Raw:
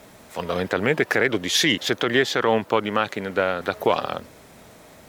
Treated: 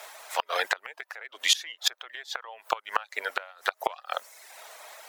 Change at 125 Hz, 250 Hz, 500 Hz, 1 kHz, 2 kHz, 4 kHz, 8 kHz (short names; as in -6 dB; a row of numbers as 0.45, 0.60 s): under -35 dB, -30.5 dB, -16.0 dB, -6.0 dB, -8.0 dB, -4.0 dB, -2.0 dB